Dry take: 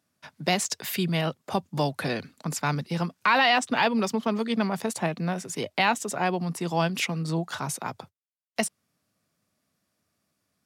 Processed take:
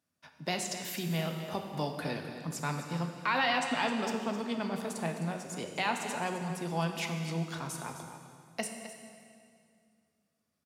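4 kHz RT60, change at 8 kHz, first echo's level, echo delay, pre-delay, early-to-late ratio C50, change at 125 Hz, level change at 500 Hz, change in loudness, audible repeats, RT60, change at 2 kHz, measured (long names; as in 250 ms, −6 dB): 2.1 s, −7.5 dB, −12.0 dB, 260 ms, 3 ms, 4.5 dB, −6.0 dB, −7.0 dB, −7.5 dB, 1, 2.3 s, −7.5 dB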